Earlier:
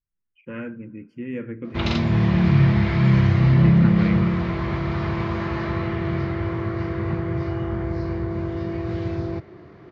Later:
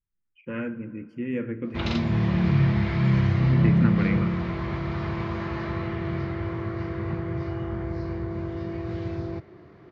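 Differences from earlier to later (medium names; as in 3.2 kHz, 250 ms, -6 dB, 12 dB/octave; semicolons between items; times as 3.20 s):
speech: send +11.0 dB; background -4.5 dB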